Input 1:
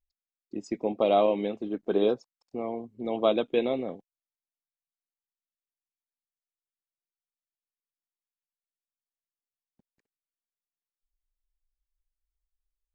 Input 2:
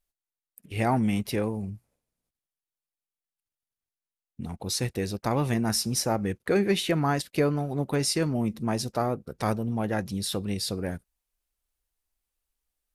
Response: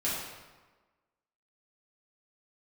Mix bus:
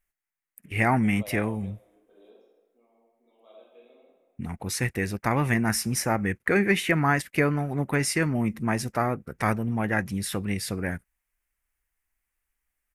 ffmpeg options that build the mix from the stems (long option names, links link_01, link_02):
-filter_complex "[0:a]highpass=380,adelay=200,volume=-20dB,asplit=2[link_01][link_02];[link_02]volume=-15dB[link_03];[1:a]equalizer=frequency=500:width_type=o:width=1:gain=-4,equalizer=frequency=2000:width_type=o:width=1:gain=12,equalizer=frequency=4000:width_type=o:width=1:gain=-11,volume=2dB,asplit=2[link_04][link_05];[link_05]apad=whole_len=579781[link_06];[link_01][link_06]sidechaingate=range=-33dB:threshold=-38dB:ratio=16:detection=peak[link_07];[2:a]atrim=start_sample=2205[link_08];[link_03][link_08]afir=irnorm=-1:irlink=0[link_09];[link_07][link_04][link_09]amix=inputs=3:normalize=0"